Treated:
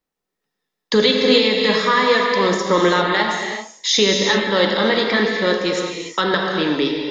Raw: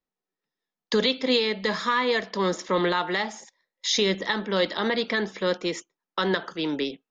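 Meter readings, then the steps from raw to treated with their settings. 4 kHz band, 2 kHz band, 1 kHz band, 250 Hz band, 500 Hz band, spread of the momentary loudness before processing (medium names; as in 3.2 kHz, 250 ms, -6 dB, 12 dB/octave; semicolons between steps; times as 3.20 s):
+8.5 dB, +9.0 dB, +8.5 dB, +8.0 dB, +8.5 dB, 8 LU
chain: gated-style reverb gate 420 ms flat, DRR 0.5 dB; trim +6 dB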